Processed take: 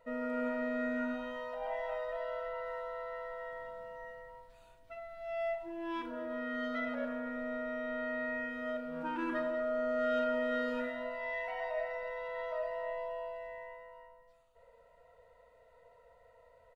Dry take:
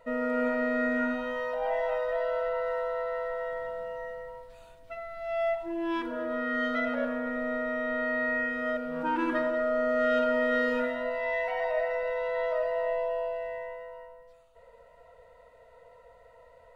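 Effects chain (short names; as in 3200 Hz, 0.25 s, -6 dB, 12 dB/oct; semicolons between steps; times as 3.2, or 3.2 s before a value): doubler 37 ms -9.5 dB; gain -7.5 dB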